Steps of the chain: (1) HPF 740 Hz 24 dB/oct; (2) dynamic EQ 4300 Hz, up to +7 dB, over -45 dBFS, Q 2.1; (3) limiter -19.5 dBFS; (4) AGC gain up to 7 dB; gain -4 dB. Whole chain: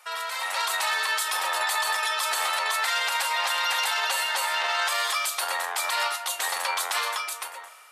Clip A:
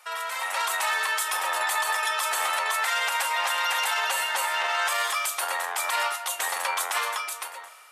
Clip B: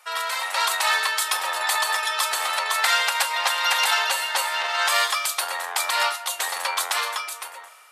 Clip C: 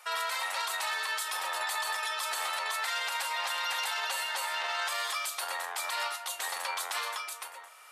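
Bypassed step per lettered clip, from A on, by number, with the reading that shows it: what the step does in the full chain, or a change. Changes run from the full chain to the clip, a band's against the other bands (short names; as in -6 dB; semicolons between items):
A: 2, 4 kHz band -3.0 dB; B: 3, mean gain reduction 2.5 dB; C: 4, momentary loudness spread change -1 LU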